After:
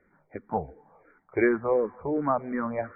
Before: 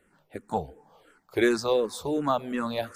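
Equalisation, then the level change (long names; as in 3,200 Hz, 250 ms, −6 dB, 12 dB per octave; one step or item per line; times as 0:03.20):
linear-phase brick-wall low-pass 2,400 Hz
0.0 dB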